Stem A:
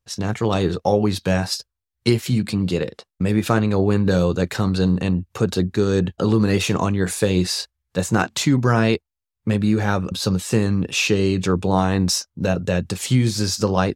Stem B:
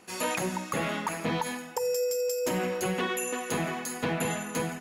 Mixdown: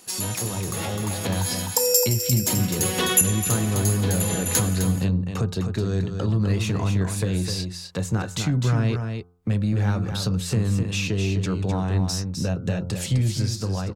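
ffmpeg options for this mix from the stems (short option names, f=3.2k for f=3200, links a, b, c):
-filter_complex "[0:a]acrossover=split=140[a][b];[b]acompressor=threshold=-33dB:ratio=3[c];[a][c]amix=inputs=2:normalize=0,asoftclip=type=tanh:threshold=-16.5dB,volume=-3dB,asplit=3[d][e][f];[e]volume=-6.5dB[g];[1:a]aexciter=amount=4.6:drive=3.2:freq=3.3k,volume=-0.5dB,asplit=2[h][i];[i]volume=-12.5dB[j];[f]apad=whole_len=211732[k];[h][k]sidechaincompress=threshold=-35dB:ratio=8:attack=16:release=211[l];[g][j]amix=inputs=2:normalize=0,aecho=0:1:256:1[m];[d][l][m]amix=inputs=3:normalize=0,bandreject=f=87.98:t=h:w=4,bandreject=f=175.96:t=h:w=4,bandreject=f=263.94:t=h:w=4,bandreject=f=351.92:t=h:w=4,bandreject=f=439.9:t=h:w=4,bandreject=f=527.88:t=h:w=4,bandreject=f=615.86:t=h:w=4,bandreject=f=703.84:t=h:w=4,bandreject=f=791.82:t=h:w=4,bandreject=f=879.8:t=h:w=4,bandreject=f=967.78:t=h:w=4,bandreject=f=1.05576k:t=h:w=4,bandreject=f=1.14374k:t=h:w=4,bandreject=f=1.23172k:t=h:w=4,bandreject=f=1.3197k:t=h:w=4,bandreject=f=1.40768k:t=h:w=4,bandreject=f=1.49566k:t=h:w=4,dynaudnorm=f=480:g=5:m=6dB"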